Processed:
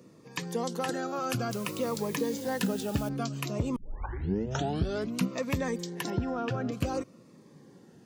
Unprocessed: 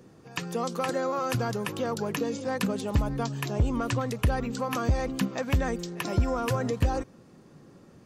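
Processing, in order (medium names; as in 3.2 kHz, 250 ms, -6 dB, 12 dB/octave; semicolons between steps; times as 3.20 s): high-pass 140 Hz 12 dB/octave; 1.51–3.09 s: word length cut 8-bit, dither triangular; 3.76 s: tape start 1.53 s; 6.10–6.72 s: distance through air 200 m; Shepard-style phaser falling 0.56 Hz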